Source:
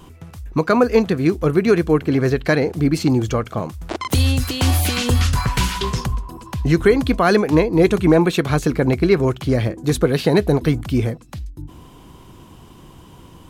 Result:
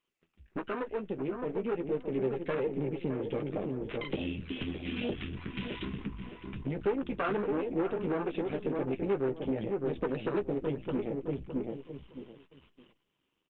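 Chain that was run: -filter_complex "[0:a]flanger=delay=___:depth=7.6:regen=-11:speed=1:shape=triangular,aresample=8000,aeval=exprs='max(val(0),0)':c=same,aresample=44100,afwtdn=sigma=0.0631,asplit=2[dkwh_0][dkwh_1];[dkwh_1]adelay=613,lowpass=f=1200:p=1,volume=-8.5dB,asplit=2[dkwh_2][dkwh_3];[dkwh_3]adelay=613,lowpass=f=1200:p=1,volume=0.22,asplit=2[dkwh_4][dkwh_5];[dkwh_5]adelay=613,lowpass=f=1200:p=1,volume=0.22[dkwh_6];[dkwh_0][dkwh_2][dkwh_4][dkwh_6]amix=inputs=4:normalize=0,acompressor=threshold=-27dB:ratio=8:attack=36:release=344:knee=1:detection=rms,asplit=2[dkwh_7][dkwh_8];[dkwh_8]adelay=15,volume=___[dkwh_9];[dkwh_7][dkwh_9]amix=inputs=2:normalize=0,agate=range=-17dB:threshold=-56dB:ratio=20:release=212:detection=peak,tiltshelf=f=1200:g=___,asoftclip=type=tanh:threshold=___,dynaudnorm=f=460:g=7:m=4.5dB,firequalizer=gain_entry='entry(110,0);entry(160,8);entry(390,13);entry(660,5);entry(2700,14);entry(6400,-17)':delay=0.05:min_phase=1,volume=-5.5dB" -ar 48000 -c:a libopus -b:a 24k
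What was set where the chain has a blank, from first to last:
3.6, -11dB, -6.5, -27.5dB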